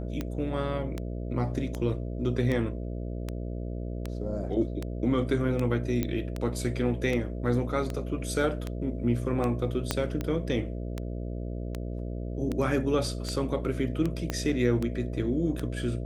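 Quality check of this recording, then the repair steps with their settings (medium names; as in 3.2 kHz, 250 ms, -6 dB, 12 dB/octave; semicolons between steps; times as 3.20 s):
buzz 60 Hz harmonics 11 -34 dBFS
tick 78 rpm -18 dBFS
6.03 s: pop -15 dBFS
9.91 s: pop -10 dBFS
14.30 s: pop -15 dBFS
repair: de-click; de-hum 60 Hz, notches 11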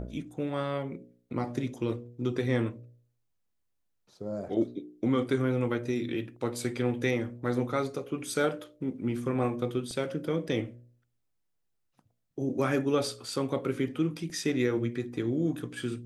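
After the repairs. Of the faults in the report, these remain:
6.03 s: pop
9.91 s: pop
14.30 s: pop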